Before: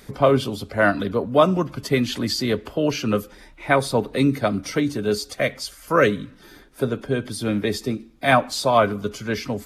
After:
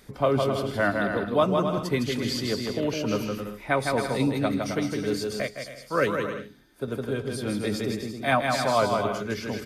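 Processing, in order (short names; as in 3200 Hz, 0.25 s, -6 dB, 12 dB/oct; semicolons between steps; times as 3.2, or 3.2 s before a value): bouncing-ball echo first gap 0.16 s, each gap 0.65×, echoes 5; 5.42–6.88 upward expander 1.5:1, over -30 dBFS; gain -6.5 dB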